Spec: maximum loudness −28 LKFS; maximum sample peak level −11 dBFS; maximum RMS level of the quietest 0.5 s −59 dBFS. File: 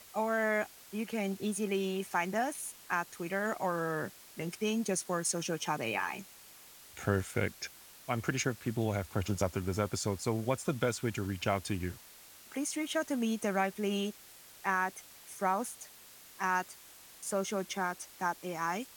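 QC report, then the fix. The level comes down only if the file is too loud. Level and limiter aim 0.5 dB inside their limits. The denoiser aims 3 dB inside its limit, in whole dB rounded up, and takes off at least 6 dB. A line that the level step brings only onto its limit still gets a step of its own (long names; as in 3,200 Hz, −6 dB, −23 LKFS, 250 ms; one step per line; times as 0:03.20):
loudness −34.5 LKFS: in spec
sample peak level −14.5 dBFS: in spec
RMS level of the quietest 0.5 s −55 dBFS: out of spec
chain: broadband denoise 7 dB, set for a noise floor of −55 dBFS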